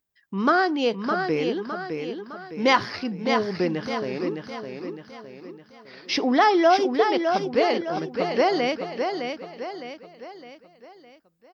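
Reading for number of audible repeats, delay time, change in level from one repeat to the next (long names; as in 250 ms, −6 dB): 5, 610 ms, −7.0 dB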